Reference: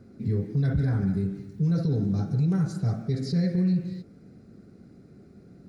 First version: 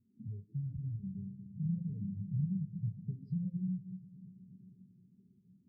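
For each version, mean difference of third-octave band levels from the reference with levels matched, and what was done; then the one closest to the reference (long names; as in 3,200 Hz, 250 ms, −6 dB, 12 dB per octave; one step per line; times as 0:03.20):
9.5 dB: downward compressor 3 to 1, threshold −43 dBFS, peak gain reduction 16 dB
echo that builds up and dies away 118 ms, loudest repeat 5, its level −13 dB
every bin expanded away from the loudest bin 2.5 to 1
level +1.5 dB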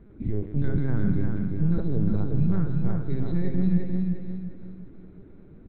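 4.5 dB: high-frequency loss of the air 67 metres
linear-prediction vocoder at 8 kHz pitch kept
repeating echo 354 ms, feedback 39%, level −4 dB
level +1 dB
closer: second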